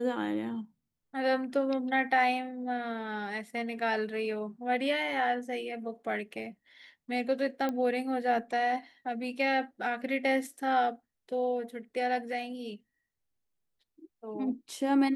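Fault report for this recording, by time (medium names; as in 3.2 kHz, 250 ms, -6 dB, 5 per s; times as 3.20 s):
7.69 s: pop -20 dBFS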